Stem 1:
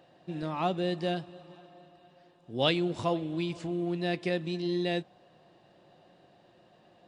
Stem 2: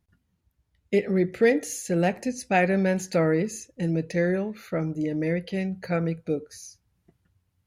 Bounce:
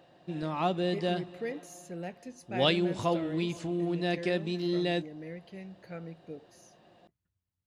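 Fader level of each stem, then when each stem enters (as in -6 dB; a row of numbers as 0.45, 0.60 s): +0.5, -16.5 dB; 0.00, 0.00 s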